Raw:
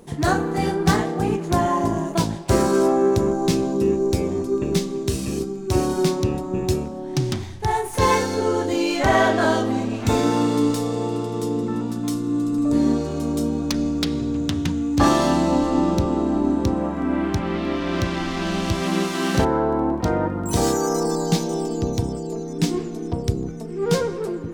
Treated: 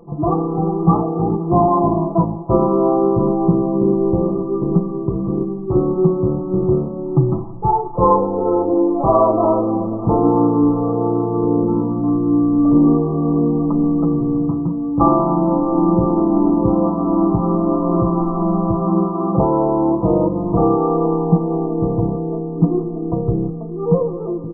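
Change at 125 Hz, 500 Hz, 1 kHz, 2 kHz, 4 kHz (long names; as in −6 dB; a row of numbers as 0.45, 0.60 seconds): +5.5 dB, +4.5 dB, +4.5 dB, below −40 dB, below −40 dB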